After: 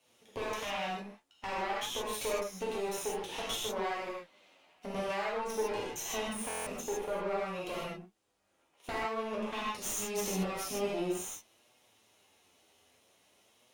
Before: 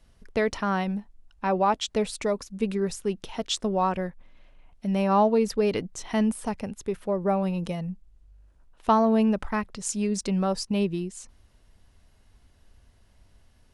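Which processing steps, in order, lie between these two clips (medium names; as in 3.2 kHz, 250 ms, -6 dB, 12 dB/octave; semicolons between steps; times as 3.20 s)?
comb filter that takes the minimum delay 0.32 ms; high-pass 440 Hz 12 dB/octave; compression 8:1, threshold -35 dBFS, peak gain reduction 16 dB; valve stage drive 34 dB, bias 0.75; gated-style reverb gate 180 ms flat, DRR -6.5 dB; flange 0.51 Hz, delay 7.8 ms, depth 4.7 ms, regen +46%; buffer glitch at 6.48 s, samples 1024, times 7; trim +6 dB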